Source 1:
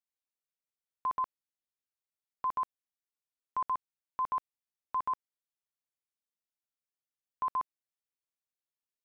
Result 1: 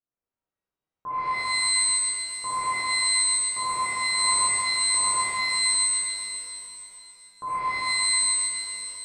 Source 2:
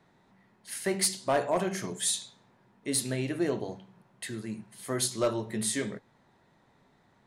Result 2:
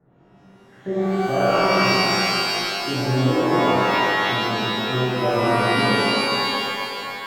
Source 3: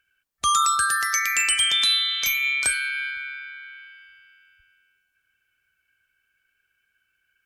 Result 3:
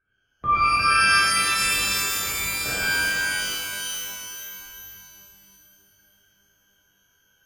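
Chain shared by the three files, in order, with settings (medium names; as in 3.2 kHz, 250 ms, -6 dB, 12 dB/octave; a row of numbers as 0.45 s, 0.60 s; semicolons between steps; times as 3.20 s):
low-pass 1.3 kHz 24 dB/octave; peaking EQ 930 Hz -10 dB 0.68 oct; de-hum 111.3 Hz, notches 31; peak limiter -25.5 dBFS; pitch-shifted reverb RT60 2.7 s, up +12 st, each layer -2 dB, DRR -12 dB; trim +1.5 dB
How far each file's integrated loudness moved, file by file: +14.0 LU, +11.0 LU, -0.5 LU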